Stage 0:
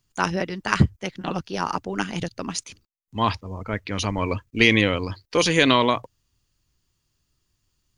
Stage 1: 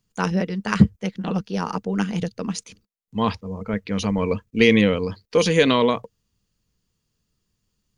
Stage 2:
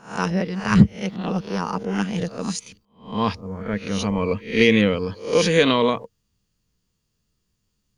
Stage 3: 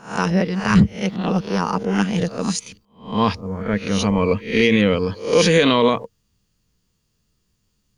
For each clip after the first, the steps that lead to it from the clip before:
small resonant body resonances 200/460 Hz, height 12 dB, ringing for 60 ms; gain -3 dB
spectral swells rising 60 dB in 0.40 s; gain -1 dB
limiter -9.5 dBFS, peak gain reduction 7.5 dB; gain +4.5 dB

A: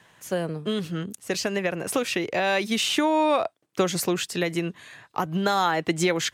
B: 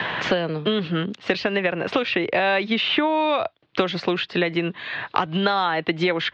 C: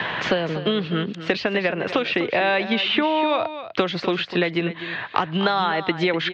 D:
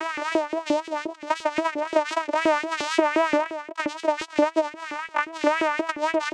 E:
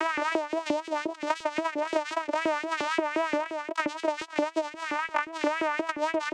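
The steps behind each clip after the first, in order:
steep low-pass 4000 Hz 36 dB/oct; low shelf 370 Hz -5.5 dB; three-band squash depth 100%; gain +4 dB
echo 0.249 s -12 dB
vocoder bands 4, saw 310 Hz; LFO high-pass saw up 5.7 Hz 360–2500 Hz; vibrato 3.8 Hz 88 cents
three-band squash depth 100%; gain -5.5 dB

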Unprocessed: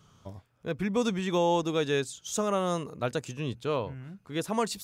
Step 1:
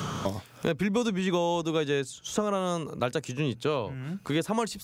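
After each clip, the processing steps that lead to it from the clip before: three-band squash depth 100%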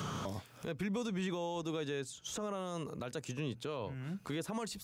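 limiter -23 dBFS, peak gain reduction 11 dB; gain -6 dB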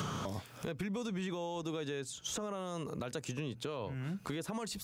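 compressor, threshold -40 dBFS, peak gain reduction 7 dB; gain +5 dB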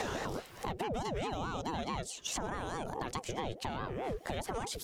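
ring modulator with a swept carrier 440 Hz, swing 50%, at 4.7 Hz; gain +4.5 dB

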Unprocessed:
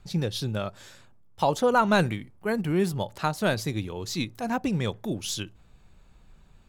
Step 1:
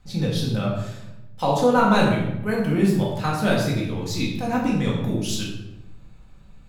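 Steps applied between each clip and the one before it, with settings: shoebox room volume 360 m³, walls mixed, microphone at 2 m; gain -2 dB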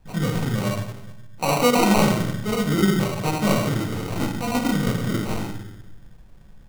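sample-and-hold 26×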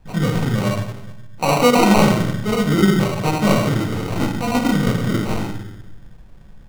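high shelf 6300 Hz -5.5 dB; gain +4.5 dB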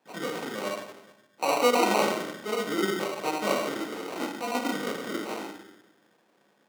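HPF 290 Hz 24 dB/oct; gain -7.5 dB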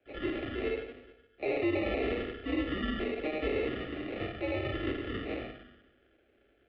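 limiter -19 dBFS, peak gain reduction 11 dB; mistuned SSB -150 Hz 200–3200 Hz; fixed phaser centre 400 Hz, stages 4; gain +2 dB

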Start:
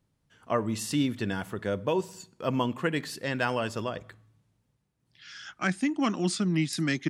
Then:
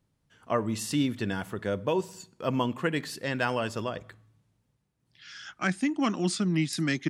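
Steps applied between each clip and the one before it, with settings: nothing audible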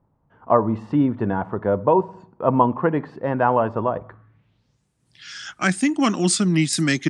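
low-pass sweep 940 Hz -> 8900 Hz, 4.08–4.88; gain +7.5 dB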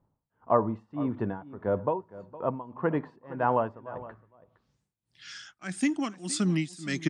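tremolo 1.7 Hz, depth 92%; echo 0.463 s -17.5 dB; gain -6 dB

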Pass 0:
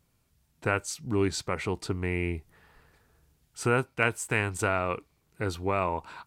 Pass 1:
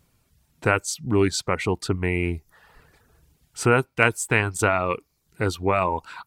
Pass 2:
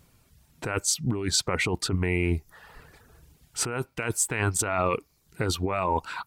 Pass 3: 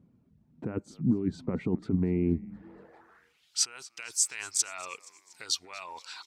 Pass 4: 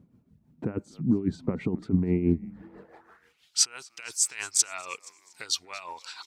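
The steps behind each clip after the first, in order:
reverb removal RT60 0.55 s; gain +7 dB
negative-ratio compressor -26 dBFS, ratio -1
frequency-shifting echo 0.237 s, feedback 57%, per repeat -140 Hz, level -21 dB; band-pass sweep 220 Hz -> 5400 Hz, 2.56–3.62; gain +6.5 dB
tremolo 6.1 Hz, depth 59%; gain +5 dB

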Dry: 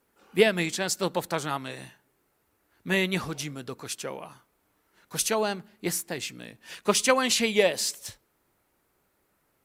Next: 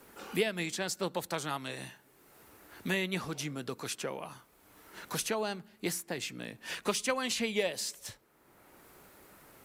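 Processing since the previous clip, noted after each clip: three-band squash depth 70%; gain -6.5 dB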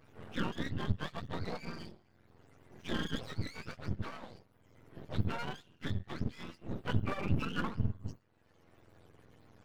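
spectrum mirrored in octaves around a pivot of 780 Hz; half-wave rectifier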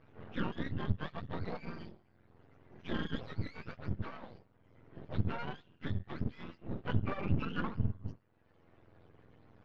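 air absorption 240 m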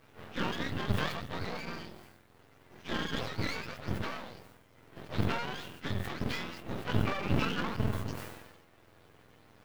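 spectral whitening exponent 0.6; sustainer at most 46 dB/s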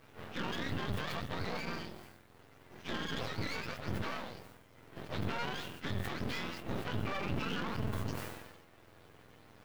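limiter -27 dBFS, peak gain reduction 11.5 dB; gain +1 dB

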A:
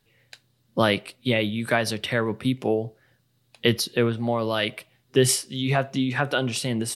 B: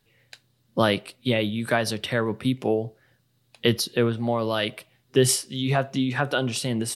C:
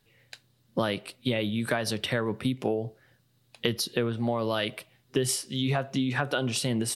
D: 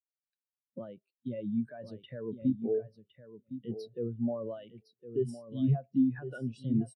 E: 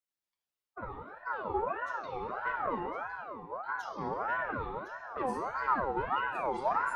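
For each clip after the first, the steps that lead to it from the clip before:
dynamic EQ 2200 Hz, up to -4 dB, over -39 dBFS, Q 2.6
compressor 6:1, threshold -23 dBFS, peak gain reduction 9.5 dB
limiter -18 dBFS, peak gain reduction 10.5 dB; feedback echo 1.061 s, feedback 20%, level -5 dB; spectral expander 2.5:1; gain -3 dB
soft clip -32 dBFS, distortion -7 dB; reverb RT60 2.2 s, pre-delay 7 ms, DRR -2 dB; ring modulator with a swept carrier 930 Hz, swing 35%, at 1.6 Hz; gain +1.5 dB

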